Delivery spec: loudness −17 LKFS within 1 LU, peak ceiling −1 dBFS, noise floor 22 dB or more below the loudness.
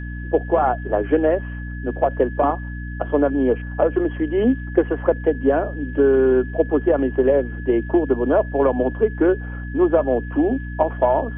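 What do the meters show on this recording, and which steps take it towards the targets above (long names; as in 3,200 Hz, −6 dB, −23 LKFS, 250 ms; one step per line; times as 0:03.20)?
mains hum 60 Hz; hum harmonics up to 300 Hz; level of the hum −27 dBFS; interfering tone 1,700 Hz; level of the tone −37 dBFS; integrated loudness −20.0 LKFS; sample peak −3.0 dBFS; target loudness −17.0 LKFS
→ mains-hum notches 60/120/180/240/300 Hz
notch filter 1,700 Hz, Q 30
level +3 dB
brickwall limiter −1 dBFS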